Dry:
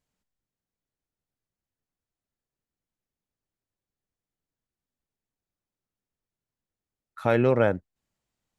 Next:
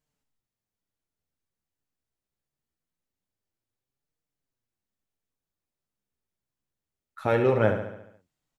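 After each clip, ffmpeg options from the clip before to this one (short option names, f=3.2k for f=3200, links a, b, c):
-filter_complex "[0:a]flanger=delay=6.3:depth=9.4:regen=38:speed=0.24:shape=triangular,asplit=2[a][b];[b]aecho=0:1:70|140|210|280|350|420|490:0.398|0.223|0.125|0.0699|0.0392|0.0219|0.0123[c];[a][c]amix=inputs=2:normalize=0,volume=2.5dB"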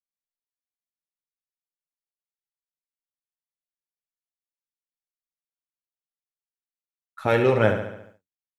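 -af "agate=range=-33dB:threshold=-48dB:ratio=3:detection=peak,adynamicequalizer=threshold=0.0112:dfrequency=1800:dqfactor=0.7:tfrequency=1800:tqfactor=0.7:attack=5:release=100:ratio=0.375:range=3:mode=boostabove:tftype=highshelf,volume=2.5dB"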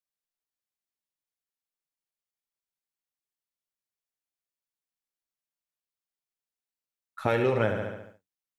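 -af "acompressor=threshold=-21dB:ratio=6"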